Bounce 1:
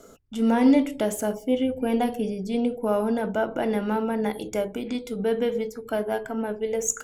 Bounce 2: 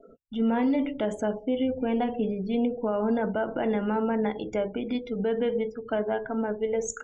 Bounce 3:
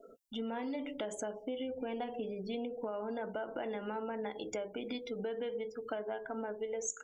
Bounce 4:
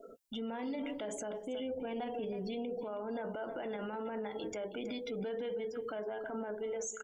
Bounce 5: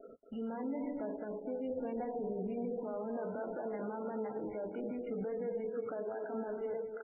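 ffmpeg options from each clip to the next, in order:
-af "lowpass=4400,afftdn=nr=32:nf=-45,alimiter=limit=0.126:level=0:latency=1:release=63"
-af "bass=f=250:g=-11,treble=f=4000:g=11,acompressor=threshold=0.02:ratio=5,volume=0.794"
-filter_complex "[0:a]asplit=2[s0][s1];[s1]adelay=320.7,volume=0.178,highshelf=f=4000:g=-7.22[s2];[s0][s2]amix=inputs=2:normalize=0,alimiter=level_in=3.76:limit=0.0631:level=0:latency=1:release=12,volume=0.266,volume=1.5"
-af "aecho=1:1:229|458|687:0.398|0.111|0.0312,aresample=11025,adynamicsmooth=sensitivity=2:basefreq=1500,aresample=44100,volume=1.12" -ar 16000 -c:a libmp3lame -b:a 8k

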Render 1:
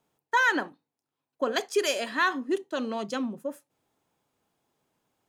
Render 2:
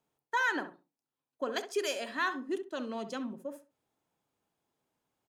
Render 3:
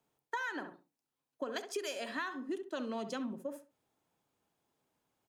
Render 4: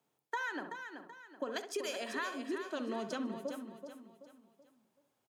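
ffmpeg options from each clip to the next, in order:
-filter_complex "[0:a]asplit=2[s0][s1];[s1]adelay=66,lowpass=f=1400:p=1,volume=0.355,asplit=2[s2][s3];[s3]adelay=66,lowpass=f=1400:p=1,volume=0.24,asplit=2[s4][s5];[s5]adelay=66,lowpass=f=1400:p=1,volume=0.24[s6];[s0][s2][s4][s6]amix=inputs=4:normalize=0,volume=0.447"
-filter_complex "[0:a]acrossover=split=130[s0][s1];[s1]acompressor=threshold=0.0158:ratio=10[s2];[s0][s2]amix=inputs=2:normalize=0,volume=1.19"
-filter_complex "[0:a]highpass=110,asplit=2[s0][s1];[s1]aecho=0:1:380|760|1140|1520:0.398|0.151|0.0575|0.0218[s2];[s0][s2]amix=inputs=2:normalize=0"

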